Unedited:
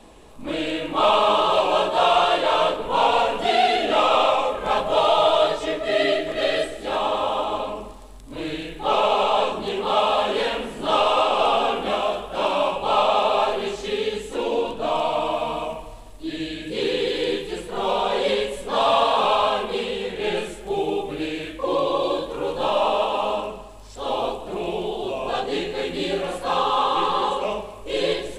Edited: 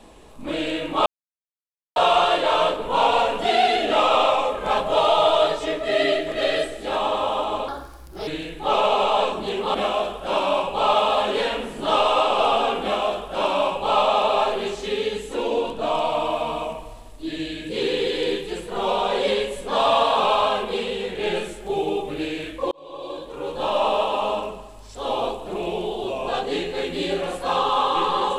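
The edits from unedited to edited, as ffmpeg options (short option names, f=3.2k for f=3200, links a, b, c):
-filter_complex "[0:a]asplit=8[a][b][c][d][e][f][g][h];[a]atrim=end=1.06,asetpts=PTS-STARTPTS,afade=t=out:st=1.056:d=0.004:c=hsin[i];[b]atrim=start=1.06:end=1.96,asetpts=PTS-STARTPTS,volume=0[j];[c]atrim=start=1.96:end=7.684,asetpts=PTS-STARTPTS,afade=t=in:d=0.004:c=hsin[k];[d]atrim=start=7.68:end=8.47,asetpts=PTS-STARTPTS,asetrate=58653,aresample=44100[l];[e]atrim=start=8.466:end=9.942[m];[f]atrim=start=11.828:end=13.022[n];[g]atrim=start=9.938:end=21.72,asetpts=PTS-STARTPTS,afade=t=out:st=11.778:d=0.004:c=hsin[o];[h]atrim=start=21.72,asetpts=PTS-STARTPTS,afade=t=in:d=1.16[p];[i][j][k]concat=n=3:v=0:a=1[q];[q][l]acrossfade=d=0.004:c1=hsin:c2=hsin[r];[r][m]acrossfade=d=0.004:c1=hsin:c2=hsin[s];[s][n]acrossfade=d=0.004:c1=hsin:c2=hsin[t];[o][p]concat=n=2:v=0:a=1[u];[t][u]acrossfade=d=0.004:c1=hsin:c2=hsin"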